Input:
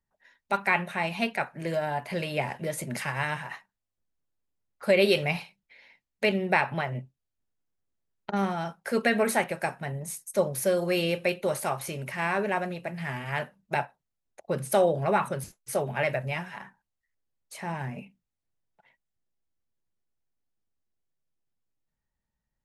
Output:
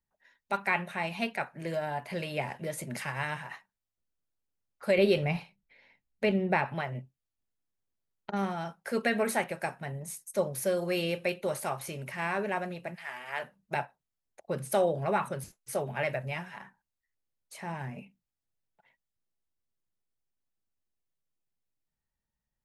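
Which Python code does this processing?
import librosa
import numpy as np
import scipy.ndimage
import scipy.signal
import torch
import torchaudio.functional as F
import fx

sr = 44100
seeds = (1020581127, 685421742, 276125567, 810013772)

y = fx.tilt_eq(x, sr, slope=-2.0, at=(4.98, 6.66))
y = fx.highpass(y, sr, hz=fx.line((12.94, 920.0), (13.43, 370.0)), slope=12, at=(12.94, 13.43), fade=0.02)
y = y * 10.0 ** (-4.0 / 20.0)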